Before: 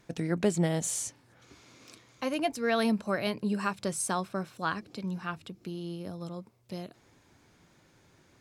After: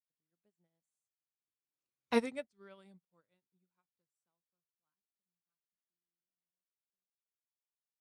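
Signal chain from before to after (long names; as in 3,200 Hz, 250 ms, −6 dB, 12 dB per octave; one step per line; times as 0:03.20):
gliding playback speed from 80% → 130%
source passing by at 0:02.12, 57 m/s, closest 4.9 metres
expander for the loud parts 2.5 to 1, over −57 dBFS
level +5.5 dB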